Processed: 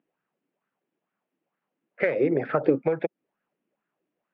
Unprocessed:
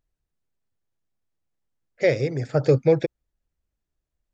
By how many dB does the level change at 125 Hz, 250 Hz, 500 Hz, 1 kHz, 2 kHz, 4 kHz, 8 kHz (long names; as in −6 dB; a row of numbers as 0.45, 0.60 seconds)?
−12.0 dB, +0.5 dB, −3.5 dB, +2.5 dB, 0.0 dB, below −10 dB, can't be measured